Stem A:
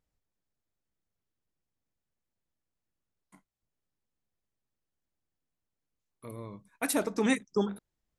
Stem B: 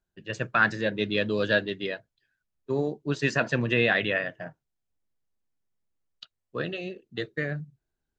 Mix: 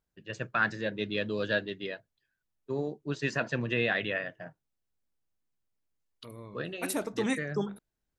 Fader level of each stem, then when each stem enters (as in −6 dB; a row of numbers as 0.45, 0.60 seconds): −3.5, −5.5 decibels; 0.00, 0.00 seconds